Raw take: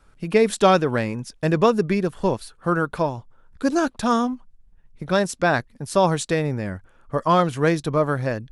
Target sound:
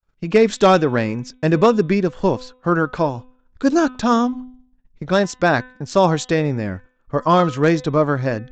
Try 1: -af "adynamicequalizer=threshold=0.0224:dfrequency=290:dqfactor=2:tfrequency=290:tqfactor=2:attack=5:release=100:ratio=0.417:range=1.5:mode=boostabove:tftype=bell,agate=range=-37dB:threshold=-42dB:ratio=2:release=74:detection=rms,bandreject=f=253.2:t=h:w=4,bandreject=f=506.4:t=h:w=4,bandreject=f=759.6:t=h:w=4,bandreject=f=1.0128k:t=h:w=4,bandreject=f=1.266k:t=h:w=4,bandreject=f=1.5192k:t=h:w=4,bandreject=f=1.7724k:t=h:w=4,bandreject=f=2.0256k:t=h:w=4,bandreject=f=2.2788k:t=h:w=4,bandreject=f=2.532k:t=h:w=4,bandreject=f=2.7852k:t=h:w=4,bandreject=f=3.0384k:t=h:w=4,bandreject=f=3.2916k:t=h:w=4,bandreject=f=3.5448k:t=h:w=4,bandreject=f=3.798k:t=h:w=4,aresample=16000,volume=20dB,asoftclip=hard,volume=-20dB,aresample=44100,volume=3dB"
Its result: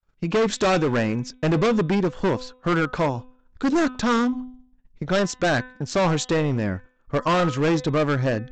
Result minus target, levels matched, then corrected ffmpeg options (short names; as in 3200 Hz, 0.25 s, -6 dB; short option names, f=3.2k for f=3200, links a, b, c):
overloaded stage: distortion +19 dB
-af "adynamicequalizer=threshold=0.0224:dfrequency=290:dqfactor=2:tfrequency=290:tqfactor=2:attack=5:release=100:ratio=0.417:range=1.5:mode=boostabove:tftype=bell,agate=range=-37dB:threshold=-42dB:ratio=2:release=74:detection=rms,bandreject=f=253.2:t=h:w=4,bandreject=f=506.4:t=h:w=4,bandreject=f=759.6:t=h:w=4,bandreject=f=1.0128k:t=h:w=4,bandreject=f=1.266k:t=h:w=4,bandreject=f=1.5192k:t=h:w=4,bandreject=f=1.7724k:t=h:w=4,bandreject=f=2.0256k:t=h:w=4,bandreject=f=2.2788k:t=h:w=4,bandreject=f=2.532k:t=h:w=4,bandreject=f=2.7852k:t=h:w=4,bandreject=f=3.0384k:t=h:w=4,bandreject=f=3.2916k:t=h:w=4,bandreject=f=3.5448k:t=h:w=4,bandreject=f=3.798k:t=h:w=4,aresample=16000,volume=8.5dB,asoftclip=hard,volume=-8.5dB,aresample=44100,volume=3dB"